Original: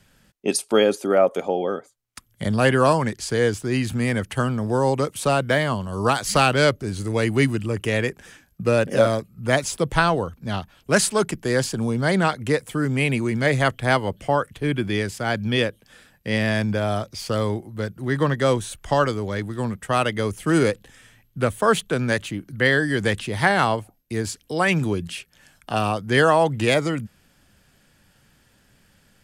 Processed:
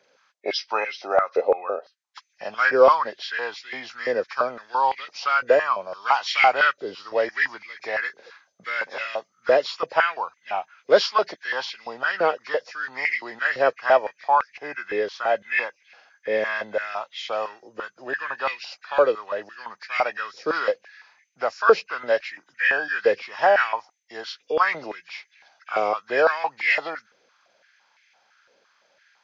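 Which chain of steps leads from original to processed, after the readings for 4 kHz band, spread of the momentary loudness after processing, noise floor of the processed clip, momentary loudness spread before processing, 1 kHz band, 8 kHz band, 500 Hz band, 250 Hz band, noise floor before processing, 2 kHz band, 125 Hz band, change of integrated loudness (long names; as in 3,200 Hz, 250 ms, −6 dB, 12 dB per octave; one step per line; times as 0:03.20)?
−3.5 dB, 15 LU, −68 dBFS, 10 LU, +1.5 dB, below −15 dB, −1.0 dB, −17.0 dB, −60 dBFS, +1.0 dB, below −30 dB, −1.5 dB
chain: hearing-aid frequency compression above 1,500 Hz 1.5 to 1
high-pass on a step sequencer 5.9 Hz 490–2,100 Hz
level −3.5 dB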